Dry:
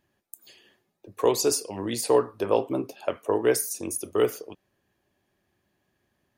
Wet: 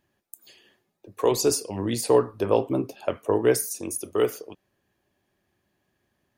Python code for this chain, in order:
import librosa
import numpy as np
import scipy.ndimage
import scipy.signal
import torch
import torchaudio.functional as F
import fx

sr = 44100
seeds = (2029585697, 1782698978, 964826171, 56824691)

y = fx.low_shelf(x, sr, hz=200.0, db=9.5, at=(1.31, 3.7))